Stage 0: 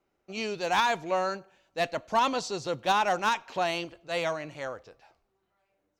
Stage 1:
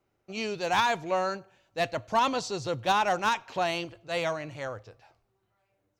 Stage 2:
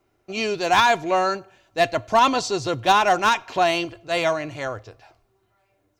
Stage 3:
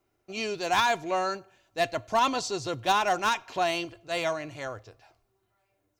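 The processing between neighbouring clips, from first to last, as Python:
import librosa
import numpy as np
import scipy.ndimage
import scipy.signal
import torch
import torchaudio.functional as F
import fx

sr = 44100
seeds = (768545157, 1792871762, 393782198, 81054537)

y1 = fx.peak_eq(x, sr, hz=110.0, db=14.5, octaves=0.44)
y2 = y1 + 0.34 * np.pad(y1, (int(2.9 * sr / 1000.0), 0))[:len(y1)]
y2 = F.gain(torch.from_numpy(y2), 7.5).numpy()
y3 = fx.high_shelf(y2, sr, hz=5900.0, db=5.5)
y3 = F.gain(torch.from_numpy(y3), -7.5).numpy()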